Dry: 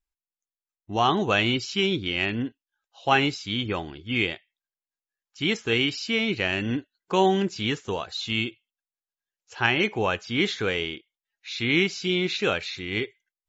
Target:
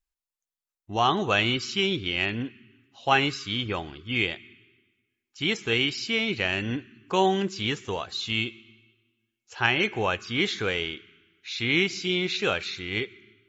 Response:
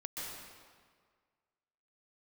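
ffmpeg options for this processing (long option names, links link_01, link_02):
-filter_complex "[0:a]equalizer=frequency=260:width=0.6:gain=-3,asplit=2[link_01][link_02];[link_02]asuperstop=centerf=670:order=20:qfactor=1[link_03];[1:a]atrim=start_sample=2205,asetrate=52920,aresample=44100[link_04];[link_03][link_04]afir=irnorm=-1:irlink=0,volume=-19dB[link_05];[link_01][link_05]amix=inputs=2:normalize=0"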